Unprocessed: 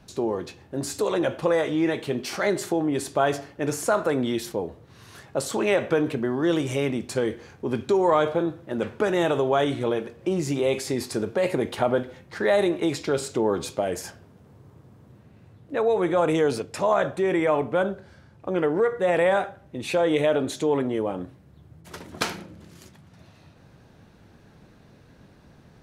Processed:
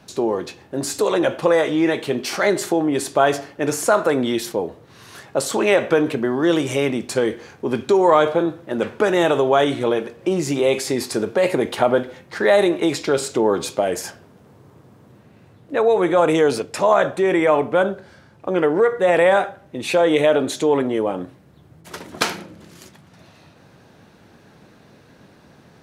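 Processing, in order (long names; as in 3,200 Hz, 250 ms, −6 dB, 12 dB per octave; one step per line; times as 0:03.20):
high-pass filter 210 Hz 6 dB per octave
level +6.5 dB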